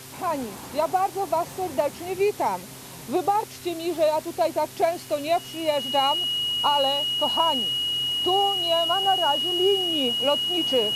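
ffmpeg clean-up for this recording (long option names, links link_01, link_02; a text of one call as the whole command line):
ffmpeg -i in.wav -af "adeclick=threshold=4,bandreject=frequency=130.4:width_type=h:width=4,bandreject=frequency=260.8:width_type=h:width=4,bandreject=frequency=391.2:width_type=h:width=4,bandreject=frequency=2900:width=30,afwtdn=0.0079" out.wav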